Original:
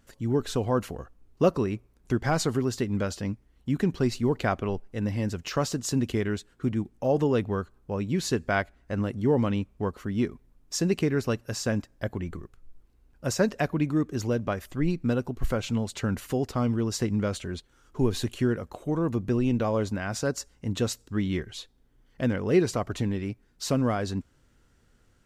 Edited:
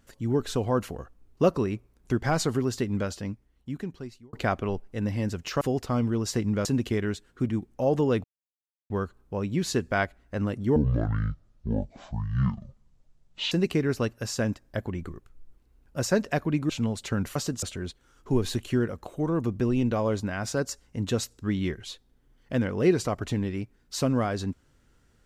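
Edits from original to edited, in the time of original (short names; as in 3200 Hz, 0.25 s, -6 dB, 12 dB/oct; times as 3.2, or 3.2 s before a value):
2.89–4.33 fade out
5.61–5.88 swap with 16.27–17.31
7.47 insert silence 0.66 s
9.33–10.79 speed 53%
13.97–15.61 cut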